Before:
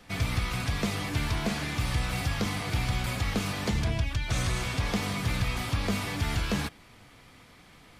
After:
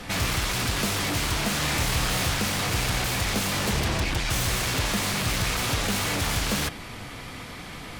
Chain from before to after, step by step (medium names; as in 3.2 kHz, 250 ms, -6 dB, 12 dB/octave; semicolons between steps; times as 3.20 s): in parallel at -9 dB: sine folder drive 19 dB, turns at -17 dBFS; 1.59–2.34 s: on the sum: doubling 26 ms -6 dB